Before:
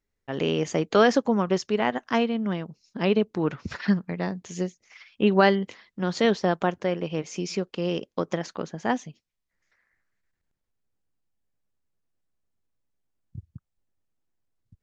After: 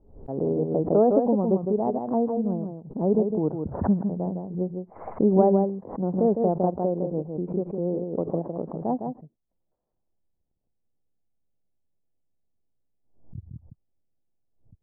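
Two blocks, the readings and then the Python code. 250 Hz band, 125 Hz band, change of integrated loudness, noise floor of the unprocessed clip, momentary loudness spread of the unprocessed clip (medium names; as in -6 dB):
+1.5 dB, +2.0 dB, +0.5 dB, -81 dBFS, 12 LU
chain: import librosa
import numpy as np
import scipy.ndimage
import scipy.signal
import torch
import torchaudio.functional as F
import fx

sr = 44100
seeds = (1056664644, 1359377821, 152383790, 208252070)

y = scipy.signal.sosfilt(scipy.signal.butter(6, 820.0, 'lowpass', fs=sr, output='sos'), x)
y = y + 10.0 ** (-6.0 / 20.0) * np.pad(y, (int(158 * sr / 1000.0), 0))[:len(y)]
y = fx.pre_swell(y, sr, db_per_s=99.0)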